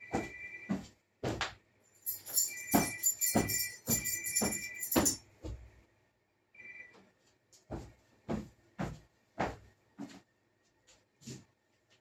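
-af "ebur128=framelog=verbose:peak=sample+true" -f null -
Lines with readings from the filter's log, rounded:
Integrated loudness:
  I:         -34.0 LUFS
  Threshold: -46.4 LUFS
Loudness range:
  LRA:        15.7 LU
  Threshold: -56.0 LUFS
  LRA low:   -47.7 LUFS
  LRA high:  -32.0 LUFS
Sample peak:
  Peak:      -14.0 dBFS
True peak:
  Peak:      -13.6 dBFS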